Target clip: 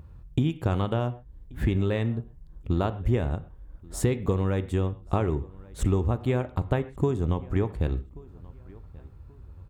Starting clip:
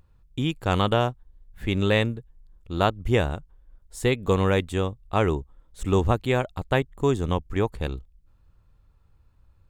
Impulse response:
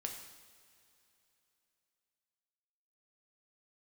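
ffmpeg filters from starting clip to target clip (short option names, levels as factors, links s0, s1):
-filter_complex "[0:a]highpass=50,lowshelf=f=380:g=8,acompressor=threshold=0.0355:ratio=8,asplit=2[s0][s1];[s1]adelay=1132,lowpass=f=3200:p=1,volume=0.0708,asplit=2[s2][s3];[s3]adelay=1132,lowpass=f=3200:p=1,volume=0.32[s4];[s0][s2][s4]amix=inputs=3:normalize=0,asplit=2[s5][s6];[1:a]atrim=start_sample=2205,atrim=end_sample=6174,lowpass=2500[s7];[s6][s7]afir=irnorm=-1:irlink=0,volume=0.794[s8];[s5][s8]amix=inputs=2:normalize=0,volume=1.5"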